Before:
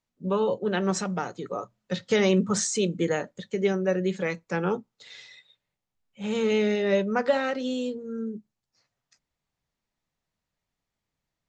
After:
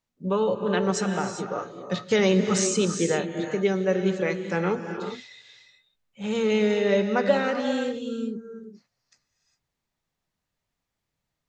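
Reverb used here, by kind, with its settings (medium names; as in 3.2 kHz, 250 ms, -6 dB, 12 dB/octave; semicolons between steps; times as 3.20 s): gated-style reverb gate 430 ms rising, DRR 6 dB; trim +1 dB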